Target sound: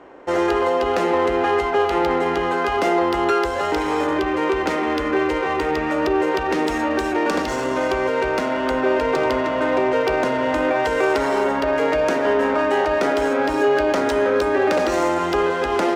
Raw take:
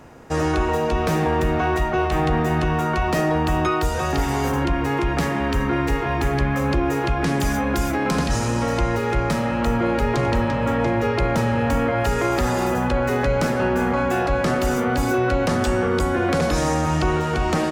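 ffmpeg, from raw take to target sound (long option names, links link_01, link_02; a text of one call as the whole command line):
ffmpeg -i in.wav -af "adynamicsmooth=sensitivity=3:basefreq=2800,asetrate=48951,aresample=44100,lowshelf=frequency=230:width_type=q:width=1.5:gain=-14,volume=1.5dB" out.wav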